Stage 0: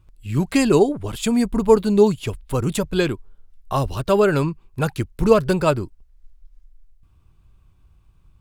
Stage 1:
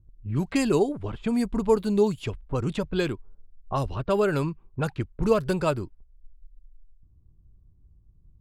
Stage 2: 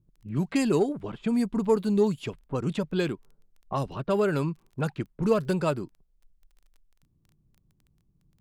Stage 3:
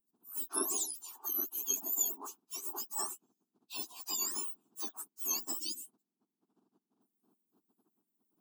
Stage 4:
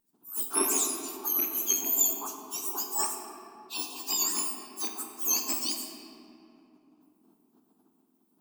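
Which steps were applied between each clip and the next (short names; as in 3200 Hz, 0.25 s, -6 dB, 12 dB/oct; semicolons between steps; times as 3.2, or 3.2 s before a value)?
low-pass opened by the level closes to 310 Hz, open at -15 dBFS; in parallel at +2 dB: compressor, threshold -26 dBFS, peak gain reduction 17 dB; on the sum: gain -9 dB
resonant low shelf 110 Hz -11.5 dB, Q 1.5; in parallel at -12 dB: soft clip -22 dBFS, distortion -10 dB; on the sum: crackle 12/s -43 dBFS; gain -3.5 dB
spectrum mirrored in octaves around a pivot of 1700 Hz; spectral gain 5.59–5.86, 360–2500 Hz -27 dB; fixed phaser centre 550 Hz, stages 6; gain -3.5 dB
rattling part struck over -53 dBFS, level -37 dBFS; vibrato 5.6 Hz 22 cents; reverb RT60 2.8 s, pre-delay 7 ms, DRR 1.5 dB; gain +6.5 dB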